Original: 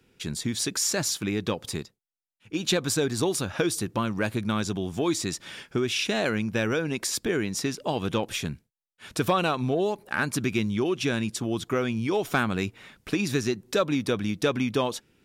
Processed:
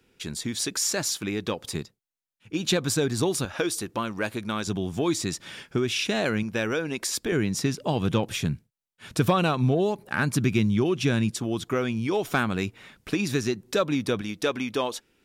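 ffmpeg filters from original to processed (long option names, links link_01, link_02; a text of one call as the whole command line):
ffmpeg -i in.wav -af "asetnsamples=nb_out_samples=441:pad=0,asendcmd='1.75 equalizer g 3;3.45 equalizer g -8;4.67 equalizer g 2.5;6.43 equalizer g -4.5;7.32 equalizer g 7.5;11.31 equalizer g 0.5;14.21 equalizer g -9.5',equalizer=frequency=130:width_type=o:width=1.6:gain=-4" out.wav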